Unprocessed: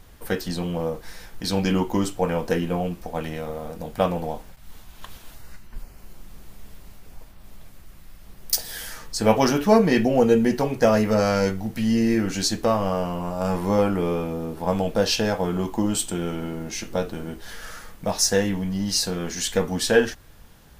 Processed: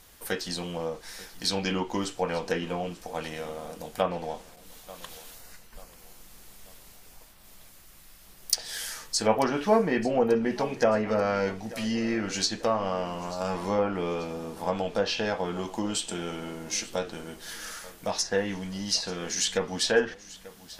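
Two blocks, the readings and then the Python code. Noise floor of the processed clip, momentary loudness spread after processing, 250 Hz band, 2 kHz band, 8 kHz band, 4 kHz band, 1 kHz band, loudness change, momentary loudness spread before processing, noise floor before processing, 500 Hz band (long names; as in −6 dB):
−52 dBFS, 15 LU, −8.0 dB, −3.0 dB, −4.0 dB, −2.0 dB, −3.5 dB, −5.5 dB, 13 LU, −47 dBFS, −5.0 dB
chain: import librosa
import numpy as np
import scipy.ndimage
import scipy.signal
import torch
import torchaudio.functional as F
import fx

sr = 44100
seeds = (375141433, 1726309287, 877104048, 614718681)

p1 = fx.low_shelf(x, sr, hz=240.0, db=-9.5)
p2 = fx.env_lowpass_down(p1, sr, base_hz=1800.0, full_db=-17.5)
p3 = fx.high_shelf(p2, sr, hz=3300.0, db=9.0)
p4 = p3 + fx.echo_feedback(p3, sr, ms=888, feedback_pct=43, wet_db=-19, dry=0)
y = F.gain(torch.from_numpy(p4), -3.5).numpy()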